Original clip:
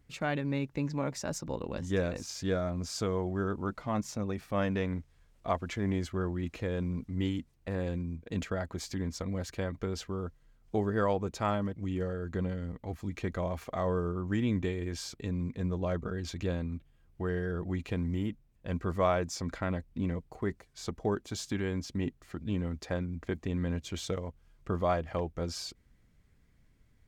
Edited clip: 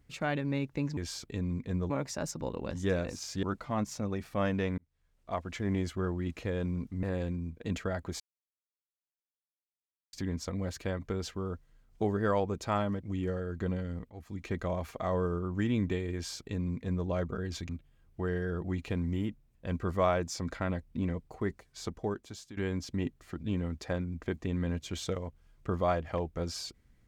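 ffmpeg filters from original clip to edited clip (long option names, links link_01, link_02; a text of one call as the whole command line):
ffmpeg -i in.wav -filter_complex "[0:a]asplit=10[link_01][link_02][link_03][link_04][link_05][link_06][link_07][link_08][link_09][link_10];[link_01]atrim=end=0.972[link_11];[link_02]atrim=start=14.868:end=15.802[link_12];[link_03]atrim=start=0.968:end=2.502[link_13];[link_04]atrim=start=3.598:end=4.95,asetpts=PTS-STARTPTS,afade=type=out:start_time=1.348:duration=0.004:curve=hsin[link_14];[link_05]atrim=start=4.95:end=7.202,asetpts=PTS-STARTPTS,afade=type=in:duration=0.92[link_15];[link_06]atrim=start=7.688:end=8.86,asetpts=PTS-STARTPTS,afade=type=out:start_time=1.168:duration=0.004:curve=hsin,apad=pad_dur=1.93[link_16];[link_07]atrim=start=8.86:end=12.83,asetpts=PTS-STARTPTS,afade=type=in:duration=0.004:curve=hsin,afade=type=out:start_time=3.966:duration=0.004:curve=hsin:silence=0.237137[link_17];[link_08]atrim=start=12.83:end=16.422,asetpts=PTS-STARTPTS,afade=type=in:duration=0.45:silence=0.237137[link_18];[link_09]atrim=start=16.698:end=21.58,asetpts=PTS-STARTPTS,afade=type=out:start_time=4.112:duration=0.77:silence=0.158489[link_19];[link_10]atrim=start=21.58,asetpts=PTS-STARTPTS,afade=type=in:duration=0.004:curve=hsin:silence=0.158489[link_20];[link_11][link_12]acrossfade=duration=0.004:curve1=hsin:curve2=hsin[link_21];[link_21][link_13]acrossfade=duration=0.004:curve1=hsin:curve2=hsin[link_22];[link_14][link_15]concat=n=2:v=0:a=1[link_23];[link_22][link_23]acrossfade=duration=0.004:curve1=hsin:curve2=hsin[link_24];[link_16][link_17][link_18]concat=n=3:v=0:a=1[link_25];[link_24][link_25]acrossfade=duration=0.004:curve1=hsin:curve2=hsin[link_26];[link_19][link_20]concat=n=2:v=0:a=1[link_27];[link_26][link_27]acrossfade=duration=0.004:curve1=hsin:curve2=hsin" out.wav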